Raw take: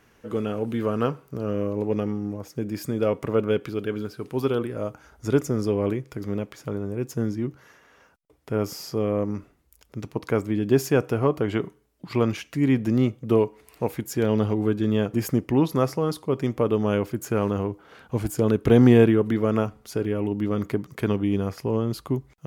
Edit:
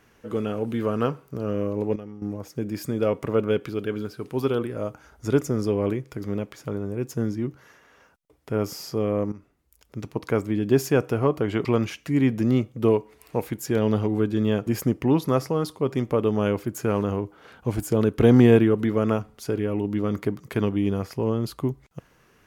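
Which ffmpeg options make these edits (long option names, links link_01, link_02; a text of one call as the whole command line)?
ffmpeg -i in.wav -filter_complex "[0:a]asplit=5[link_01][link_02][link_03][link_04][link_05];[link_01]atrim=end=1.962[link_06];[link_02]atrim=start=1.958:end=2.222,asetpts=PTS-STARTPTS,volume=-12dB[link_07];[link_03]atrim=start=2.218:end=9.32,asetpts=PTS-STARTPTS,afade=type=out:start_time=7.098:duration=0.004:curve=hsin:silence=0.223872[link_08];[link_04]atrim=start=9.32:end=11.652,asetpts=PTS-STARTPTS,afade=type=in:duration=0.67:silence=0.223872[link_09];[link_05]atrim=start=12.118[link_10];[link_06][link_07]acrossfade=duration=0.004:curve1=hsin:curve2=hsin[link_11];[link_08][link_09]concat=n=2:v=0:a=1[link_12];[link_11][link_12]acrossfade=duration=0.004:curve1=hsin:curve2=hsin[link_13];[link_13][link_10]acrossfade=duration=0.004:curve1=hsin:curve2=hsin" out.wav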